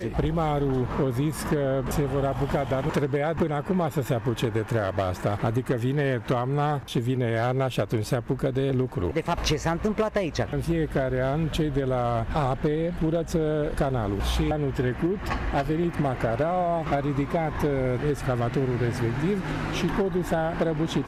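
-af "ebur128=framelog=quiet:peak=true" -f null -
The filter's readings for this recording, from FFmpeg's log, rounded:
Integrated loudness:
  I:         -26.2 LUFS
  Threshold: -36.2 LUFS
Loudness range:
  LRA:         0.5 LU
  Threshold: -46.2 LUFS
  LRA low:   -26.5 LUFS
  LRA high:  -26.0 LUFS
True peak:
  Peak:      -14.0 dBFS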